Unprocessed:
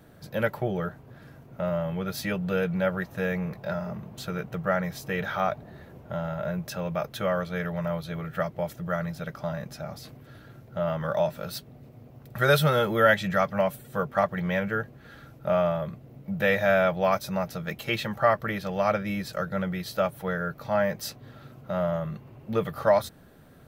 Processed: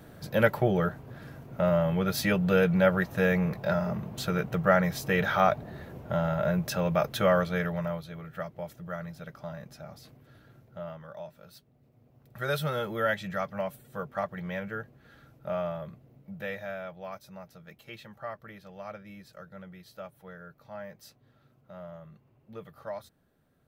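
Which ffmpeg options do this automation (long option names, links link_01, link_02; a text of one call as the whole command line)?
ffmpeg -i in.wav -af "volume=12.5dB,afade=type=out:start_time=7.36:duration=0.74:silence=0.266073,afade=type=out:start_time=10.6:duration=0.46:silence=0.354813,afade=type=in:start_time=11.73:duration=1.01:silence=0.354813,afade=type=out:start_time=15.92:duration=0.86:silence=0.354813" out.wav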